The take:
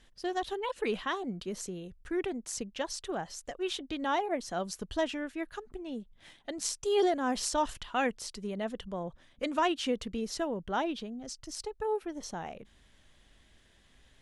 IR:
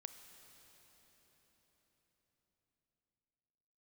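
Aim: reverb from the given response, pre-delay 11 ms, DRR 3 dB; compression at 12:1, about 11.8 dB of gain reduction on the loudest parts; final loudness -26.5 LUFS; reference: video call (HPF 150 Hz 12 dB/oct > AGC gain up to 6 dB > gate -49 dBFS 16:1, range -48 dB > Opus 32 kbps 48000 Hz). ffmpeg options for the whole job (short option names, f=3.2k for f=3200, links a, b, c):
-filter_complex "[0:a]acompressor=threshold=-35dB:ratio=12,asplit=2[a][b];[1:a]atrim=start_sample=2205,adelay=11[c];[b][c]afir=irnorm=-1:irlink=0,volume=2dB[d];[a][d]amix=inputs=2:normalize=0,highpass=150,dynaudnorm=m=6dB,agate=range=-48dB:threshold=-49dB:ratio=16,volume=13dB" -ar 48000 -c:a libopus -b:a 32k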